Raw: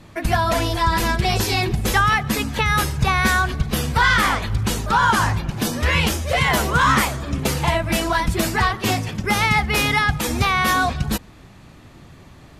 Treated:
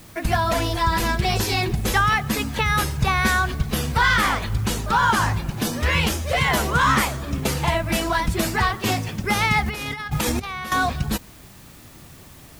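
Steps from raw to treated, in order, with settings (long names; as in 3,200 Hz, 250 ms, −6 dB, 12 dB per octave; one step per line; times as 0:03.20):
in parallel at −9 dB: bit-depth reduction 6 bits, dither triangular
0:09.66–0:10.72: on the sum: compressor whose output falls as the input rises −21 dBFS, ratio −0.5
level −4.5 dB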